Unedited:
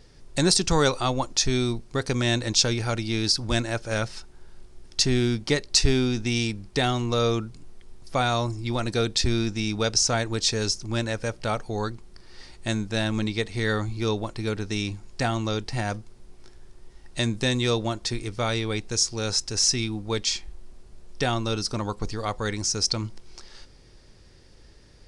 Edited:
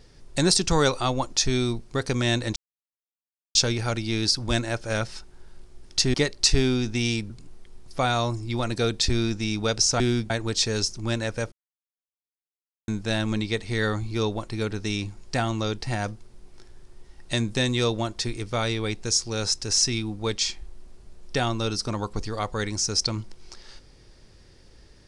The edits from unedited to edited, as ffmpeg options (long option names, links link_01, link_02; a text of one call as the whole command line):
ffmpeg -i in.wav -filter_complex "[0:a]asplit=8[link_01][link_02][link_03][link_04][link_05][link_06][link_07][link_08];[link_01]atrim=end=2.56,asetpts=PTS-STARTPTS,afade=type=out:start_time=2.556:duration=0.004:curve=hsin,apad=pad_dur=0.99[link_09];[link_02]atrim=start=2.56:end=5.152,asetpts=PTS-STARTPTS,afade=type=in:duration=0.004:curve=hsin[link_10];[link_03]atrim=start=5.448:end=6.612[link_11];[link_04]atrim=start=7.458:end=10.162[link_12];[link_05]atrim=start=5.148:end=5.452[link_13];[link_06]atrim=start=10.158:end=11.38,asetpts=PTS-STARTPTS,afade=type=out:start_time=1.218:duration=0.004:curve=hsin[link_14];[link_07]atrim=start=11.38:end=12.74,asetpts=PTS-STARTPTS,volume=0[link_15];[link_08]atrim=start=12.74,asetpts=PTS-STARTPTS,afade=type=in:duration=0.004:curve=hsin[link_16];[link_09][link_10]concat=n=2:v=0:a=1[link_17];[link_17][link_11]acrossfade=duration=0.004:curve1=hsin:curve2=hsin[link_18];[link_18][link_12]acrossfade=duration=0.004:curve1=hsin:curve2=hsin[link_19];[link_19][link_13]acrossfade=duration=0.004:curve1=hsin:curve2=hsin[link_20];[link_14][link_15][link_16]concat=n=3:v=0:a=1[link_21];[link_20][link_21]acrossfade=duration=0.004:curve1=hsin:curve2=hsin" out.wav